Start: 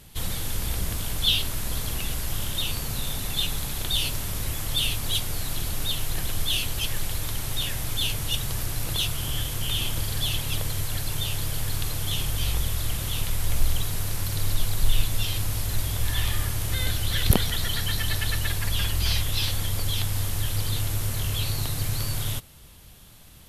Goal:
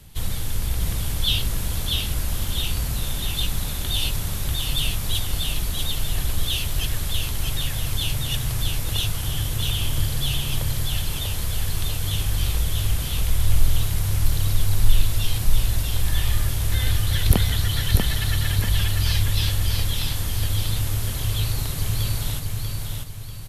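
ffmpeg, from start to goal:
-filter_complex "[0:a]acrossover=split=150|2100[s0][s1][s2];[s0]acontrast=53[s3];[s3][s1][s2]amix=inputs=3:normalize=0,aecho=1:1:641|1282|1923|2564|3205:0.668|0.261|0.102|0.0396|0.0155,volume=0.891"

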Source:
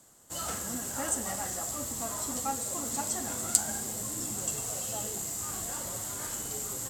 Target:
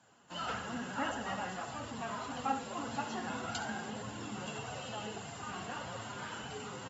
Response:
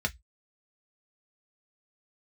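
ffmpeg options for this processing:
-filter_complex "[0:a]acrossover=split=6600[s0][s1];[s1]acompressor=threshold=0.00251:ratio=4:attack=1:release=60[s2];[s0][s2]amix=inputs=2:normalize=0,highshelf=f=2400:g=-7.5,bandreject=f=50:t=h:w=6,bandreject=f=100:t=h:w=6,bandreject=f=150:t=h:w=6,bandreject=f=200:t=h:w=6,bandreject=f=250:t=h:w=6,bandreject=f=300:t=h:w=6,asettb=1/sr,asplit=3[s3][s4][s5];[s3]atrim=end=1.454[s6];[s4]atrim=start=1.45:end=2.39,asetpts=PTS-STARTPTS,afade=t=in:d=0.004:c=qsin,afade=t=out:st=0.936:d=0.004:c=qsin,aeval=exprs='clip(val(0),-1,0.0112)':c=same[s7];[s5]atrim=start=2.386[s8];[s6][s7]acrossfade=d=0.004:c1=hsin:c2=qsin[s9];[s9][s8]acrossfade=d=0.004:c1=qsin:c2=hsin,flanger=delay=1.2:depth=4.4:regen=44:speed=1.7:shape=sinusoidal,highpass=f=100:w=0.5412,highpass=f=100:w=1.3066,equalizer=f=350:t=q:w=4:g=-6,equalizer=f=580:t=q:w=4:g=-5,equalizer=f=970:t=q:w=4:g=4,equalizer=f=1500:t=q:w=4:g=6,equalizer=f=2800:t=q:w=4:g=10,equalizer=f=6400:t=q:w=4:g=-7,lowpass=f=9100:w=0.5412,lowpass=f=9100:w=1.3066,aecho=1:1:71:0.251,volume=1.41" -ar 44100 -c:a aac -b:a 24k

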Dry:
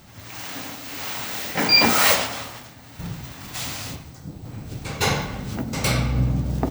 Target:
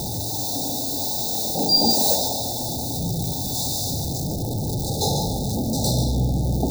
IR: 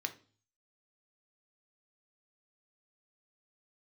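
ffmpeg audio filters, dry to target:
-filter_complex "[0:a]aeval=exprs='val(0)+0.5*0.126*sgn(val(0))':c=same,asplit=2[s0][s1];[1:a]atrim=start_sample=2205,adelay=142[s2];[s1][s2]afir=irnorm=-1:irlink=0,volume=0.447[s3];[s0][s3]amix=inputs=2:normalize=0,afftfilt=real='re*(1-between(b*sr/4096,900,3500))':imag='im*(1-between(b*sr/4096,900,3500))':win_size=4096:overlap=0.75,volume=0.668"

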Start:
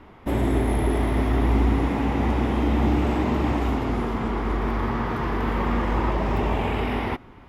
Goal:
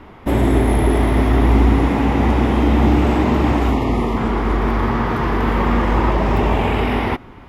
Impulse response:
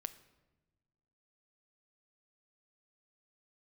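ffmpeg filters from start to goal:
-filter_complex "[0:a]asettb=1/sr,asplit=3[s0][s1][s2];[s0]atrim=end=3.724[s3];[s1]atrim=start=3.72:end=4.17,asetpts=PTS-STARTPTS,afade=t=in:d=0.004:c=qsin,afade=t=out:st=0.446:d=0.004:c=qsin,asuperstop=centerf=1500:order=8:qfactor=3.2[s4];[s2]atrim=start=4.166[s5];[s3][s4]acrossfade=d=0.004:c1=hsin:c2=qsin[s6];[s6][s5]acrossfade=d=0.004:c1=qsin:c2=hsin,volume=2.24"

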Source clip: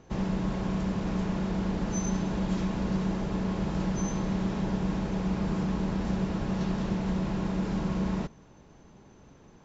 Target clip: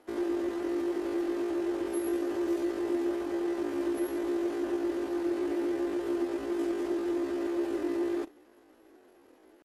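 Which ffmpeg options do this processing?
-af "lowshelf=f=120:t=q:w=3:g=-12,asetrate=80880,aresample=44100,atempo=0.545254,volume=0.447"

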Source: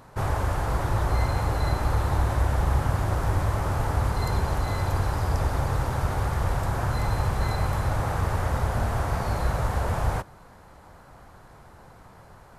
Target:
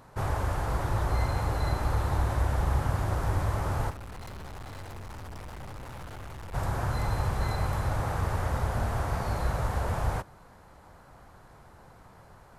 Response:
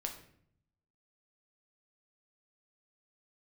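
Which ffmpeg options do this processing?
-filter_complex "[0:a]asplit=3[s0][s1][s2];[s0]afade=t=out:st=3.89:d=0.02[s3];[s1]aeval=exprs='(tanh(70.8*val(0)+0.6)-tanh(0.6))/70.8':c=same,afade=t=in:st=3.89:d=0.02,afade=t=out:st=6.53:d=0.02[s4];[s2]afade=t=in:st=6.53:d=0.02[s5];[s3][s4][s5]amix=inputs=3:normalize=0,volume=0.668"

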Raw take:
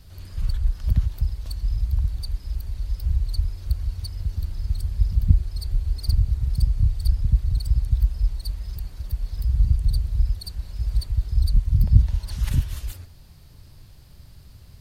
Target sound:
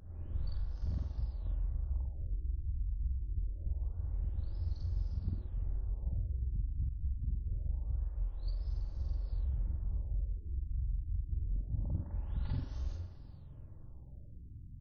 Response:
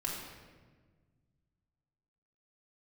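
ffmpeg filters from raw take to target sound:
-filter_complex "[0:a]afftfilt=real='re':imag='-im':win_size=4096:overlap=0.75,firequalizer=gain_entry='entry(210,0);entry(2200,-20);entry(4800,-9)':delay=0.05:min_phase=1,acrossover=split=330|3400[s0][s1][s2];[s0]acompressor=threshold=0.0224:ratio=16[s3];[s1]aecho=1:1:50|125|237.5|406.2|659.4:0.631|0.398|0.251|0.158|0.1[s4];[s2]flanger=delay=16:depth=2.5:speed=1.3[s5];[s3][s4][s5]amix=inputs=3:normalize=0,afftfilt=real='re*lt(b*sr/1024,300*pow(6700/300,0.5+0.5*sin(2*PI*0.25*pts/sr)))':imag='im*lt(b*sr/1024,300*pow(6700/300,0.5+0.5*sin(2*PI*0.25*pts/sr)))':win_size=1024:overlap=0.75,volume=1.19"

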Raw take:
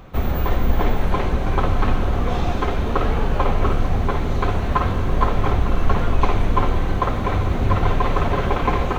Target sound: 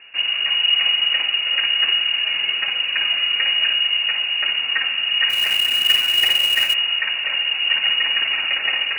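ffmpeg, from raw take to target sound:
-filter_complex "[0:a]lowpass=f=2500:t=q:w=0.5098,lowpass=f=2500:t=q:w=0.6013,lowpass=f=2500:t=q:w=0.9,lowpass=f=2500:t=q:w=2.563,afreqshift=-2900,asplit=3[s0][s1][s2];[s0]afade=t=out:st=5.29:d=0.02[s3];[s1]acrusher=bits=3:mode=log:mix=0:aa=0.000001,afade=t=in:st=5.29:d=0.02,afade=t=out:st=6.73:d=0.02[s4];[s2]afade=t=in:st=6.73:d=0.02[s5];[s3][s4][s5]amix=inputs=3:normalize=0,volume=0.75"

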